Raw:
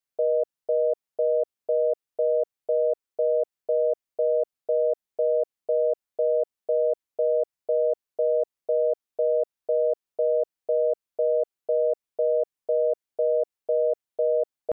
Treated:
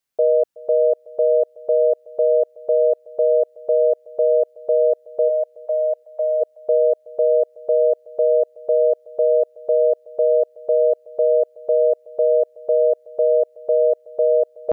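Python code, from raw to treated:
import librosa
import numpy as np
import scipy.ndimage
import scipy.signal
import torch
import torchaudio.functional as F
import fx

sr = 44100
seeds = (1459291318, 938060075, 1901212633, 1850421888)

y = fx.steep_highpass(x, sr, hz=570.0, slope=48, at=(5.28, 6.4), fade=0.02)
y = fx.echo_feedback(y, sr, ms=372, feedback_pct=16, wet_db=-22.0)
y = y * 10.0 ** (7.0 / 20.0)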